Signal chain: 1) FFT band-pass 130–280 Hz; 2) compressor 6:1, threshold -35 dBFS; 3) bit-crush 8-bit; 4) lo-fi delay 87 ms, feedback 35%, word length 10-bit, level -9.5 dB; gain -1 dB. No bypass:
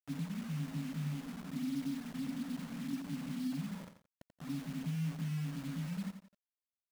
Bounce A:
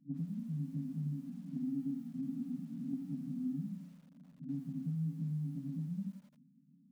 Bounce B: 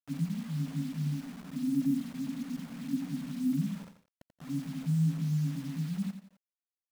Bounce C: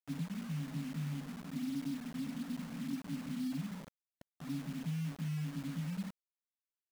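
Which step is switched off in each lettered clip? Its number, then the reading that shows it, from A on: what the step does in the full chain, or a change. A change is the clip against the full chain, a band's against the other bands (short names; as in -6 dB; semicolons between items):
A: 3, distortion -14 dB; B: 2, mean gain reduction 4.0 dB; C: 4, momentary loudness spread change -1 LU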